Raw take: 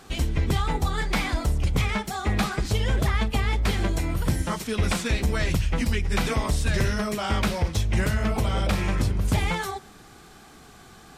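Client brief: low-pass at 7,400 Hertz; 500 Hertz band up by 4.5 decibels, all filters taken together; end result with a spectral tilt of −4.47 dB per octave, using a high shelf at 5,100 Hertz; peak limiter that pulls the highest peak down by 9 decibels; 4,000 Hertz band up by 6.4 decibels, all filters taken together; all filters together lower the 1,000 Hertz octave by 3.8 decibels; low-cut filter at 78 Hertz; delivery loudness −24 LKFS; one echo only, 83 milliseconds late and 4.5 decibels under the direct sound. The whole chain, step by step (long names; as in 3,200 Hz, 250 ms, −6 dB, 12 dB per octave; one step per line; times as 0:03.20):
high-pass filter 78 Hz
low-pass filter 7,400 Hz
parametric band 500 Hz +7.5 dB
parametric band 1,000 Hz −8.5 dB
parametric band 4,000 Hz +7 dB
high-shelf EQ 5,100 Hz +4.5 dB
brickwall limiter −19 dBFS
single-tap delay 83 ms −4.5 dB
level +3 dB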